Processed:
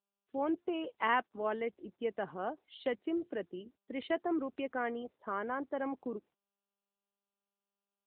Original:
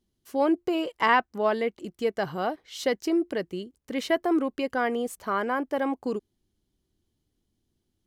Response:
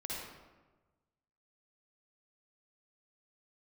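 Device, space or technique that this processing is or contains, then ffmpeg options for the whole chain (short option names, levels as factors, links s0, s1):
mobile call with aggressive noise cancelling: -af "highpass=f=180:w=0.5412,highpass=f=180:w=1.3066,afftdn=nr=34:nf=-45,volume=0.376" -ar 8000 -c:a libopencore_amrnb -b:a 10200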